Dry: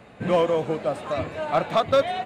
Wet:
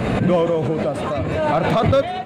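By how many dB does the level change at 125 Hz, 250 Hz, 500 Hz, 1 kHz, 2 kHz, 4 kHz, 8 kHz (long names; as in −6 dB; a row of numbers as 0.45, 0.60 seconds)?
+12.5 dB, +9.5 dB, +3.5 dB, +3.5 dB, +5.5 dB, +1.5 dB, can't be measured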